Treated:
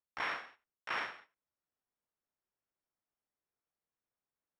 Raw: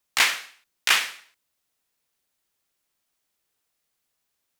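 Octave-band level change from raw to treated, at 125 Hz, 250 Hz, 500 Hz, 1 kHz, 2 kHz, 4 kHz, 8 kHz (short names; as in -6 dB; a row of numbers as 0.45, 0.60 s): n/a, -7.0 dB, -7.0 dB, -9.5 dB, -15.5 dB, -23.5 dB, -36.0 dB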